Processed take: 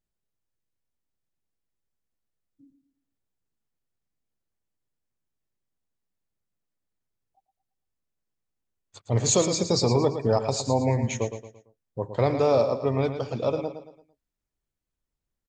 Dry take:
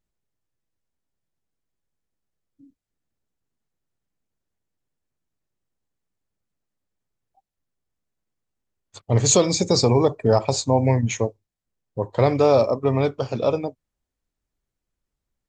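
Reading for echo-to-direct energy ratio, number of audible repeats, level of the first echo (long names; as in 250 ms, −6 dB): −9.0 dB, 4, −9.5 dB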